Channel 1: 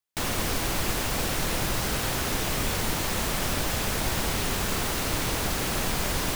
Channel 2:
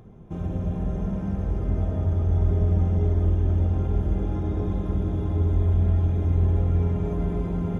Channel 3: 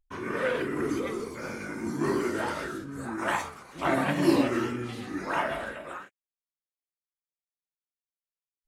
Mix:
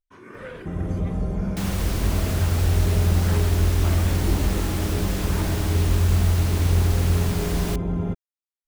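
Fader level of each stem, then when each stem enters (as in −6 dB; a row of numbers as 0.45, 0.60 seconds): −4.5, +1.5, −10.0 decibels; 1.40, 0.35, 0.00 seconds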